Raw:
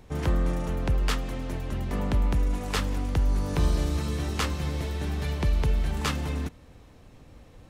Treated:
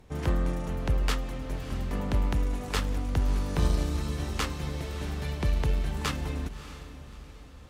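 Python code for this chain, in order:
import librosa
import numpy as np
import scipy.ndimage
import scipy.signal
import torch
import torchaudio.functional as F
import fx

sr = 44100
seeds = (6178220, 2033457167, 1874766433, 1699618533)

y = fx.cheby_harmonics(x, sr, harmonics=(3,), levels_db=(-19,), full_scale_db=-14.0)
y = fx.echo_diffused(y, sr, ms=620, feedback_pct=44, wet_db=-13)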